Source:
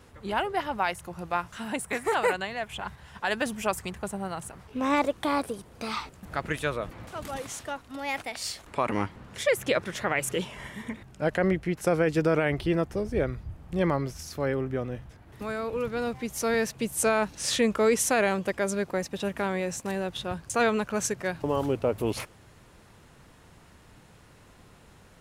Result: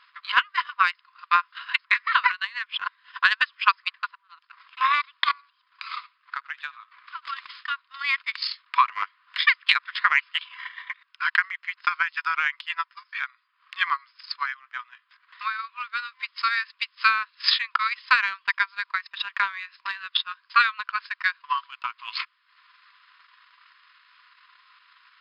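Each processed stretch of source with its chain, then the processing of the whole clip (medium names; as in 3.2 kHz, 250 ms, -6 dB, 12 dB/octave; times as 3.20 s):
4.15–4.77 s: bass shelf 220 Hz -5 dB + compression 16:1, threshold -45 dBFS + loudspeaker Doppler distortion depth 0.41 ms
5.31–7.27 s: treble shelf 2.5 kHz -5 dB + compression 2:1, threshold -43 dBFS + delay 80 ms -11 dB
whole clip: FFT band-pass 970–5200 Hz; transient shaper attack +11 dB, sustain -11 dB; trim +4.5 dB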